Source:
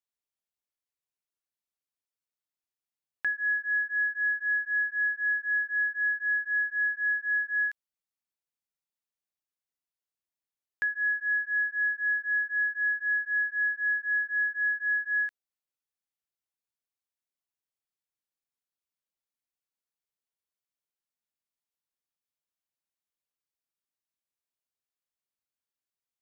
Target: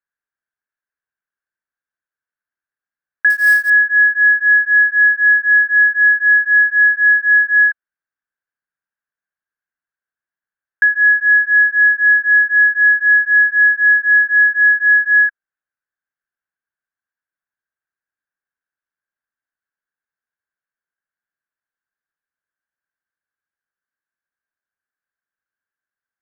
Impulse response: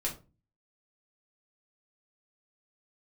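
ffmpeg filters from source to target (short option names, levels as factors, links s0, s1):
-filter_complex "[0:a]lowpass=f=1600:t=q:w=10,asettb=1/sr,asplit=3[s0][s1][s2];[s0]atrim=end=3.304[s3];[s1]atrim=start=3.3:end=3.7,asetpts=PTS-STARTPTS,afade=t=in:d=0.004:c=qsin,afade=t=out:st=0.396:d=0.004:c=qsin,acrusher=bits=5:mode=log:mix=0:aa=0.000001[s4];[s2]atrim=start=3.696[s5];[s3][s4]acrossfade=d=0.004:c1=hsin:c2=qsin[s6];[s6][s5]acrossfade=d=0.004:c1=qsin:c2=hsin"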